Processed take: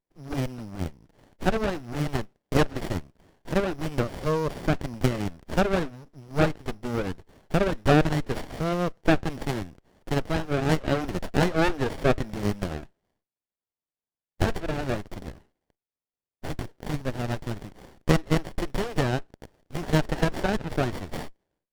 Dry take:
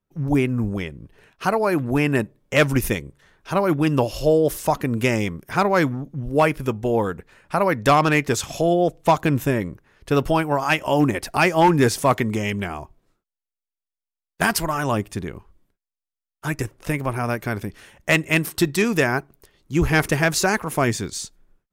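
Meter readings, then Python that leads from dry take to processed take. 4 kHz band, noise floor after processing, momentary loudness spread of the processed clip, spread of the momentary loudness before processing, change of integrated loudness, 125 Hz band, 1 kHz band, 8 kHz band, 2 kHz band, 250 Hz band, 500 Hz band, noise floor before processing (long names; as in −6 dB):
−6.0 dB, below −85 dBFS, 12 LU, 10 LU, −6.5 dB, −4.0 dB, −9.0 dB, −12.5 dB, −9.5 dB, −6.0 dB, −6.5 dB, below −85 dBFS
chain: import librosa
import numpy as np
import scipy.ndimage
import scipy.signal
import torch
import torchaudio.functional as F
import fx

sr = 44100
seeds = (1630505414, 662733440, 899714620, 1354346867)

y = np.r_[np.sort(x[:len(x) // 8 * 8].reshape(-1, 8), axis=1).ravel(), x[len(x) // 8 * 8:]]
y = scipy.signal.sosfilt(scipy.signal.butter(2, 610.0, 'highpass', fs=sr, output='sos'), y)
y = fx.high_shelf(y, sr, hz=2400.0, db=8.5)
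y = fx.env_lowpass_down(y, sr, base_hz=2400.0, full_db=-13.5)
y = fx.running_max(y, sr, window=33)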